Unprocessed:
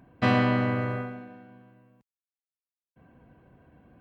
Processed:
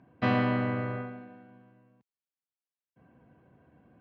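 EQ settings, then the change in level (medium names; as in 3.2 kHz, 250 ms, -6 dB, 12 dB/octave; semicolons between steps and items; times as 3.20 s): high-pass 88 Hz; distance through air 130 m; -3.0 dB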